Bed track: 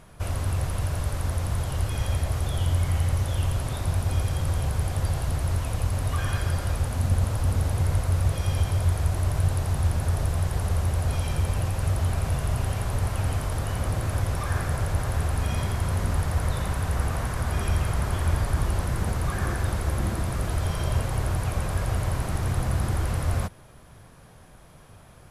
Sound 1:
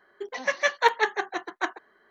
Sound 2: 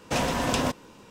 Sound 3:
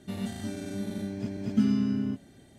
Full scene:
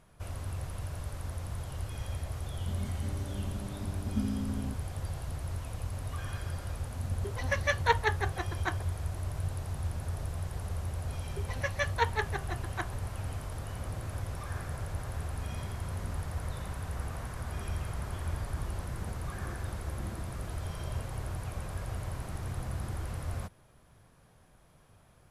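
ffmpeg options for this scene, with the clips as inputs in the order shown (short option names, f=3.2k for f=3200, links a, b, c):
-filter_complex "[1:a]asplit=2[a][b];[0:a]volume=-11dB[c];[3:a]asuperstop=centerf=2200:order=4:qfactor=1.5,atrim=end=2.58,asetpts=PTS-STARTPTS,volume=-9dB,afade=t=in:d=0.004:c=hsin,afade=t=out:st=2.576:d=0.004:c=hsin,adelay=2590[d];[a]atrim=end=2.1,asetpts=PTS-STARTPTS,volume=-5.5dB,afade=t=in:d=0.004:c=hsin,afade=t=out:st=2.096:d=0.004:c=hsin,adelay=7040[e];[b]atrim=end=2.1,asetpts=PTS-STARTPTS,volume=-8.5dB,afade=t=in:d=0.004:c=hsin,afade=t=out:st=2.096:d=0.004:c=hsin,adelay=11160[f];[c][d][e][f]amix=inputs=4:normalize=0"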